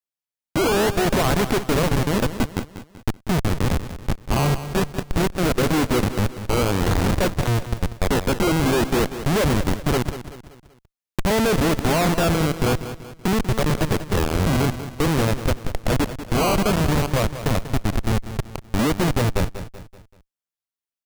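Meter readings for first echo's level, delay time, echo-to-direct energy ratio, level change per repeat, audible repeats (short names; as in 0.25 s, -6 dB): -12.0 dB, 0.191 s, -11.0 dB, -7.0 dB, 4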